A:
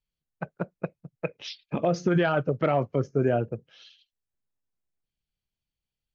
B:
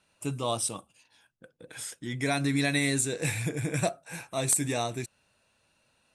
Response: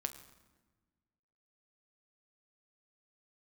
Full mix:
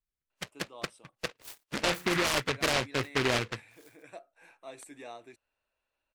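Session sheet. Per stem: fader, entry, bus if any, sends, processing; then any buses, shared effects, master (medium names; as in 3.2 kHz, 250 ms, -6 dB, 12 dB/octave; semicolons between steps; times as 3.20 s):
-3.5 dB, 0.00 s, no send, FFT band-reject 1.6–3.9 kHz; delay time shaken by noise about 1.7 kHz, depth 0.31 ms
-13.0 dB, 0.30 s, no send, three-band isolator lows -17 dB, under 250 Hz, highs -14 dB, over 3.5 kHz; auto duck -6 dB, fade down 1.30 s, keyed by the first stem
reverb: none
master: peaking EQ 160 Hz -9.5 dB 0.59 oct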